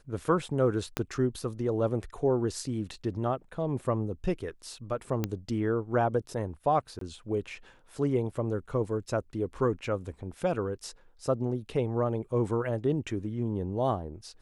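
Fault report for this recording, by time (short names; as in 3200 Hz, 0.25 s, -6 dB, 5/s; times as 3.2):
0.97 pop -13 dBFS
5.24 pop -15 dBFS
6.99–7.01 gap 23 ms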